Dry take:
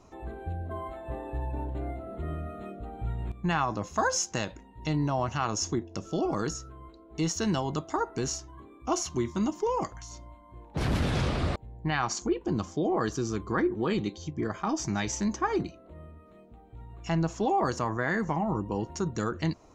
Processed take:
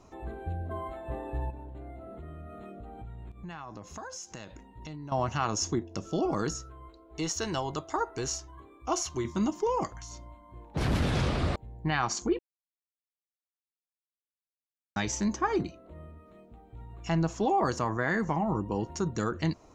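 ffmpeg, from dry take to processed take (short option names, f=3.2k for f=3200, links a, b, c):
-filter_complex "[0:a]asettb=1/sr,asplit=3[a][b][c];[a]atrim=end=1.504[d];[b]atrim=start=1.5:end=5.12,asetpts=PTS-STARTPTS,afade=t=in:d=0.004:c=qsin,afade=t=out:st=3.616:d=0.004:c=qsin,acompressor=threshold=-41dB:ratio=4:attack=3.2:release=140:knee=1:detection=peak[e];[c]atrim=start=5.116[f];[d][e]acrossfade=d=0.004:c1=hsin:c2=qsin[g];[g][f]acrossfade=d=0.004:c1=qsin:c2=hsin,asettb=1/sr,asplit=3[h][i][j];[h]atrim=end=6.624[k];[i]atrim=start=6.62:end=9.25,asetpts=PTS-STARTPTS,afade=t=in:d=0.004:c=qsin,afade=t=out:st=2.626:d=0.004:c=qsin,equalizer=f=200:w=1.5:g=-11[l];[j]atrim=start=9.246[m];[k][l]acrossfade=d=0.004:c1=hsin:c2=qsin[n];[n][m]acrossfade=d=0.004:c1=qsin:c2=hsin,asplit=3[o][p][q];[o]atrim=end=12.39,asetpts=PTS-STARTPTS,afade=t=out:st=12.386:d=0.004:c=hsin[r];[p]atrim=start=12.39:end=14.96,asetpts=PTS-STARTPTS,volume=0[s];[q]atrim=start=14.96,asetpts=PTS-STARTPTS,afade=t=in:d=0.004:c=hsin[t];[r][s][t]concat=n=3:v=0:a=1"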